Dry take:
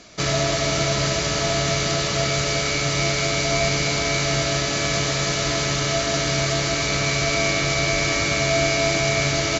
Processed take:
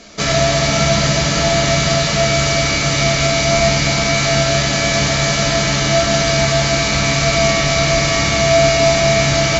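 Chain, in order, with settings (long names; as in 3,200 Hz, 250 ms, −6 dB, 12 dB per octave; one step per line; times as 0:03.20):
rectangular room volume 330 cubic metres, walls furnished, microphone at 1.6 metres
level +4 dB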